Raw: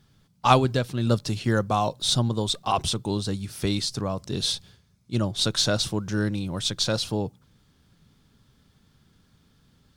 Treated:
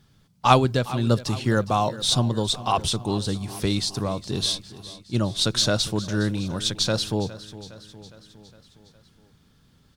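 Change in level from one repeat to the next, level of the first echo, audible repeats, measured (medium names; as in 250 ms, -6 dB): -4.5 dB, -16.5 dB, 4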